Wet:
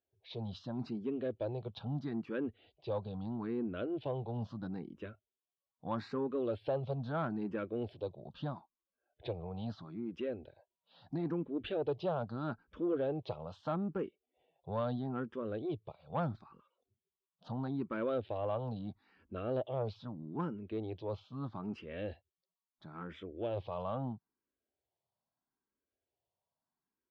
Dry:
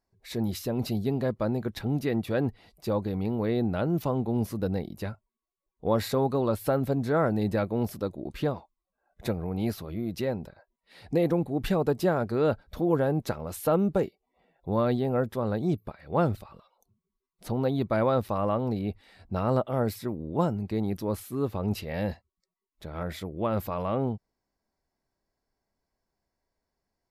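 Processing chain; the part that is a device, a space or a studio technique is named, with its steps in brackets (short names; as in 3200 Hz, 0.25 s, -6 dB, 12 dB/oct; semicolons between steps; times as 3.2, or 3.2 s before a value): barber-pole phaser into a guitar amplifier (endless phaser +0.77 Hz; soft clip -19.5 dBFS, distortion -21 dB; speaker cabinet 98–3800 Hz, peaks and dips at 200 Hz -4 dB, 2000 Hz -9 dB, 3200 Hz +6 dB); gain -5.5 dB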